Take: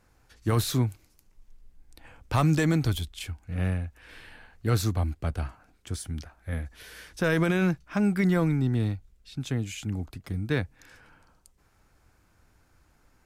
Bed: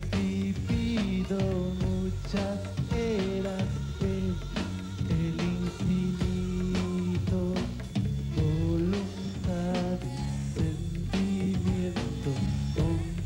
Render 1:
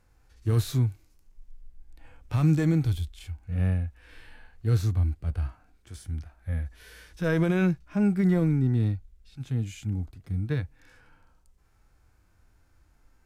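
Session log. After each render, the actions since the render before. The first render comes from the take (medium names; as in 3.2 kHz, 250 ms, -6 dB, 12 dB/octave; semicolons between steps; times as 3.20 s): harmonic-percussive split percussive -14 dB; bass shelf 91 Hz +6.5 dB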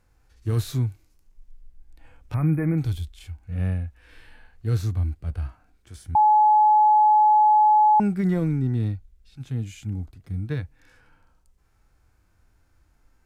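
2.34–2.78 s: brick-wall FIR band-stop 2.5–9.1 kHz; 6.15–8.00 s: bleep 851 Hz -13 dBFS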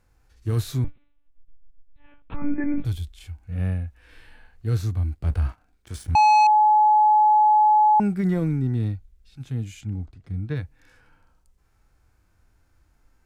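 0.84–2.85 s: monotone LPC vocoder at 8 kHz 290 Hz; 5.16–6.47 s: waveshaping leveller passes 2; 9.81–10.56 s: distance through air 61 m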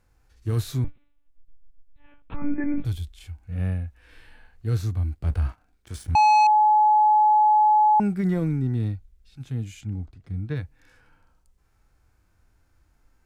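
trim -1 dB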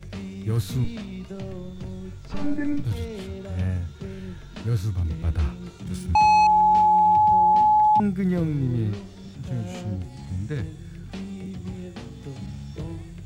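add bed -6.5 dB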